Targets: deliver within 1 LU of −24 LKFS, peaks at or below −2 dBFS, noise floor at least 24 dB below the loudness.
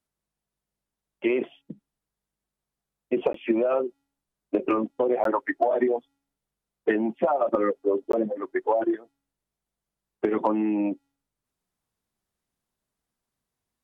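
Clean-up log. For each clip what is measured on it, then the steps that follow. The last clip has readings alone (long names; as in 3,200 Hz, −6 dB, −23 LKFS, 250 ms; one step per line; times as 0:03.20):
number of dropouts 3; longest dropout 13 ms; integrated loudness −26.0 LKFS; sample peak −10.0 dBFS; target loudness −24.0 LKFS
→ repair the gap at 0:03.33/0:05.24/0:08.12, 13 ms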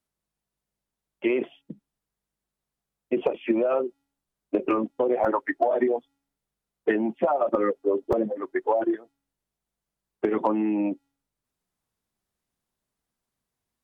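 number of dropouts 0; integrated loudness −26.0 LKFS; sample peak −10.0 dBFS; target loudness −24.0 LKFS
→ level +2 dB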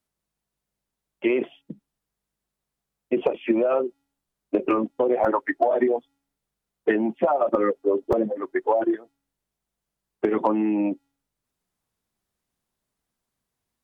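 integrated loudness −24.0 LKFS; sample peak −8.0 dBFS; background noise floor −85 dBFS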